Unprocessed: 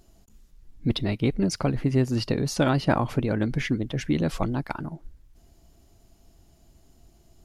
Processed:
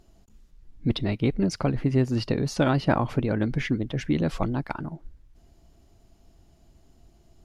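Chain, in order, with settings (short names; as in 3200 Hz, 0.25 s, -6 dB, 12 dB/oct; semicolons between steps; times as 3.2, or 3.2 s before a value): high shelf 7300 Hz -10.5 dB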